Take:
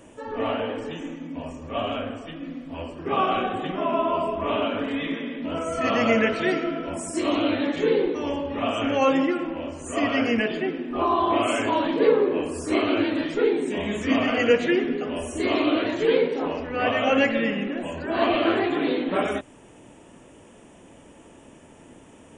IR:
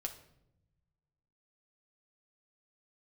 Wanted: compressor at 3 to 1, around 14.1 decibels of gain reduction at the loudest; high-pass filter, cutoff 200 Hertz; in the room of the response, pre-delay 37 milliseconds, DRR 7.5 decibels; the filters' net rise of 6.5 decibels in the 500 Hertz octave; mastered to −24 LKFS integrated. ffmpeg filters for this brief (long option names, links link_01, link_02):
-filter_complex "[0:a]highpass=200,equalizer=frequency=500:width_type=o:gain=8,acompressor=threshold=-26dB:ratio=3,asplit=2[link_01][link_02];[1:a]atrim=start_sample=2205,adelay=37[link_03];[link_02][link_03]afir=irnorm=-1:irlink=0,volume=-6.5dB[link_04];[link_01][link_04]amix=inputs=2:normalize=0,volume=3.5dB"